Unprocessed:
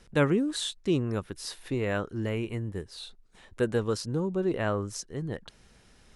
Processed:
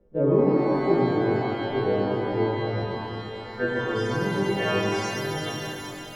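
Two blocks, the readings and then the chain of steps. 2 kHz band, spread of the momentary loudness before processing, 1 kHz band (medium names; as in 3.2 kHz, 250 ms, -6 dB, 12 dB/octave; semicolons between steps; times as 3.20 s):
+7.0 dB, 12 LU, +10.0 dB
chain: partials quantised in pitch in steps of 2 st; low-pass sweep 470 Hz -> 2.8 kHz, 2.22–4.27 s; pitch-shifted reverb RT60 3.5 s, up +12 st, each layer -8 dB, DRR -6.5 dB; trim -4.5 dB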